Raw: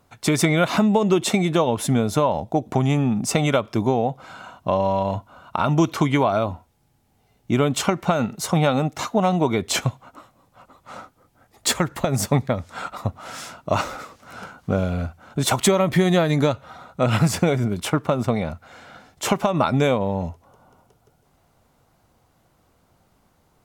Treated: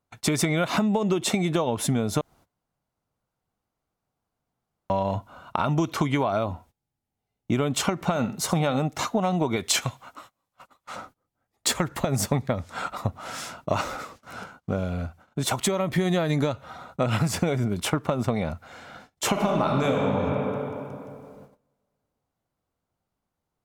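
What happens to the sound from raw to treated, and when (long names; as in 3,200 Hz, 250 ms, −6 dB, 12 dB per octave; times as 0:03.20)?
0:02.21–0:04.90: fill with room tone
0:07.94–0:08.79: flutter between parallel walls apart 11.9 metres, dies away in 0.25 s
0:09.56–0:10.96: tilt shelving filter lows −5.5 dB, about 880 Hz
0:14.43–0:15.98: clip gain −4.5 dB
0:19.29–0:20.06: thrown reverb, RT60 2.6 s, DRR −1.5 dB
whole clip: noise gate −47 dBFS, range −21 dB; downward compressor, threshold −20 dBFS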